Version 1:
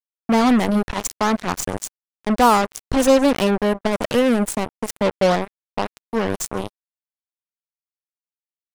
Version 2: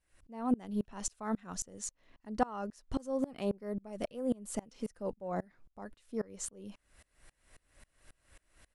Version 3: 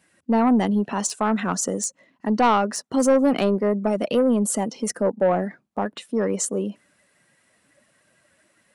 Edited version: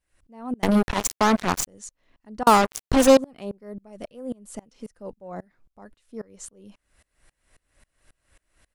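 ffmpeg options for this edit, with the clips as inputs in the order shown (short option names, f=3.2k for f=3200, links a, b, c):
-filter_complex "[0:a]asplit=2[a][b];[1:a]asplit=3[c][d][e];[c]atrim=end=0.632[f];[a]atrim=start=0.628:end=1.672[g];[d]atrim=start=1.668:end=2.472[h];[b]atrim=start=2.468:end=3.172[i];[e]atrim=start=3.168[j];[f][g]acrossfade=d=0.004:c1=hsin:c2=hsin[k];[k][h]acrossfade=d=0.004:c1=hsin:c2=hsin[l];[l][i]acrossfade=d=0.004:c1=hsin:c2=hsin[m];[m][j]acrossfade=d=0.004:c1=hsin:c2=hsin"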